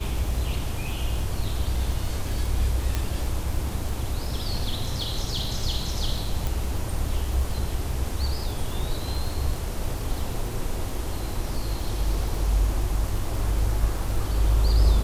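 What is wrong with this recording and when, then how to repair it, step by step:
crackle 35 per s -30 dBFS
2.95 s: pop -11 dBFS
6.47 s: pop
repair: de-click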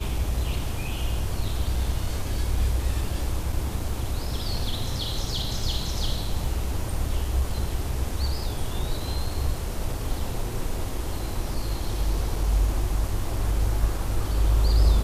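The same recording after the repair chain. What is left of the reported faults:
6.47 s: pop

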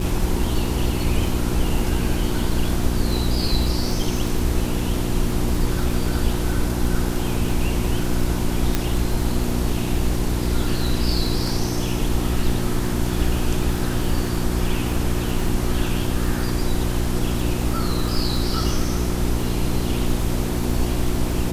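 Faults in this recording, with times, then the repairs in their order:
crackle 23 per s -25 dBFS
hum 60 Hz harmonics 6 -25 dBFS
8.75 s: pop -5 dBFS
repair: de-click; de-hum 60 Hz, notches 6

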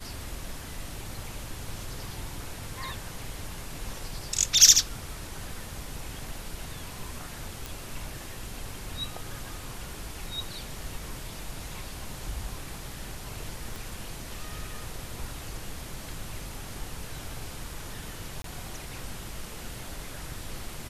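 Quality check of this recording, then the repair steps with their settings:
7.66 s: pop
13.76 s: pop
18.42–18.44 s: dropout 23 ms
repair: de-click; interpolate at 18.42 s, 23 ms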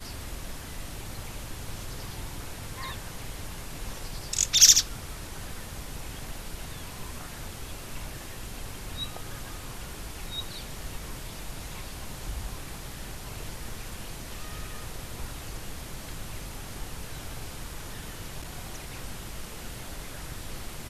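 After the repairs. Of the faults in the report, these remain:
7.66 s: pop
13.76 s: pop

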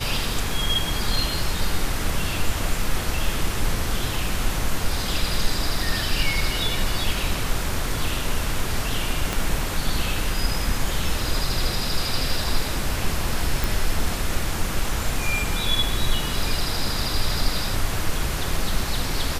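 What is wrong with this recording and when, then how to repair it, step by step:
9.33 s: pop
13.64 s: pop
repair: de-click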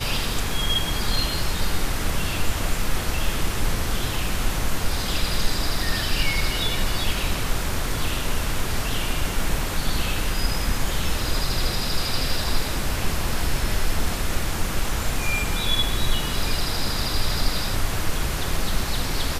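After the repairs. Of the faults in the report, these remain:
9.33 s: pop

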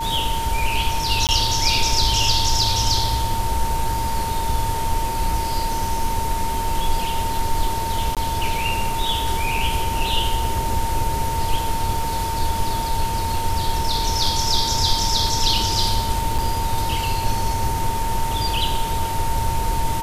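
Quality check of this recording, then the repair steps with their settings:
whine 910 Hz -24 dBFS
1.27–1.29 s: dropout 18 ms
8.15–8.17 s: dropout 17 ms
16.38–16.39 s: dropout 5.8 ms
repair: band-stop 910 Hz, Q 30; interpolate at 1.27 s, 18 ms; interpolate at 8.15 s, 17 ms; interpolate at 16.38 s, 5.8 ms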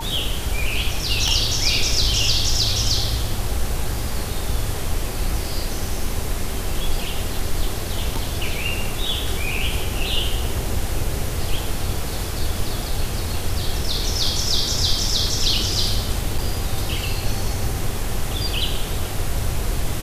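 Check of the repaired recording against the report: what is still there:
nothing left

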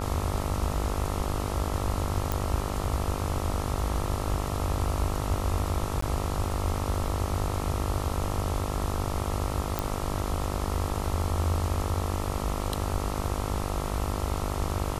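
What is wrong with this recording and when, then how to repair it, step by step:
buzz 50 Hz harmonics 27 -33 dBFS
2.32 s: pop
6.01–6.02 s: dropout 14 ms
9.79 s: pop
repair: de-click; de-hum 50 Hz, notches 27; interpolate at 6.01 s, 14 ms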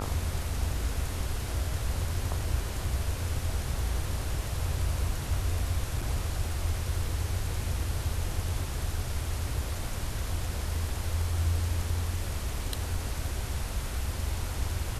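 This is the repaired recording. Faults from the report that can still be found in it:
nothing left

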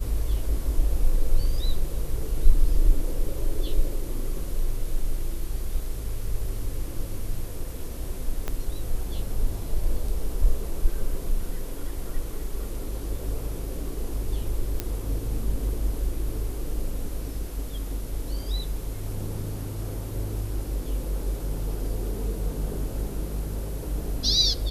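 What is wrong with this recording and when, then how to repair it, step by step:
8.48 s: pop -15 dBFS
14.80 s: pop -11 dBFS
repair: de-click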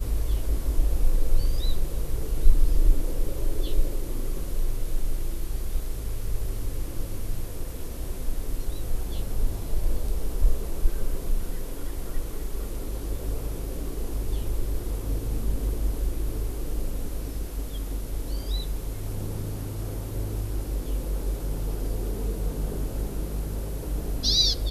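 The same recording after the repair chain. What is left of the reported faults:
8.48 s: pop

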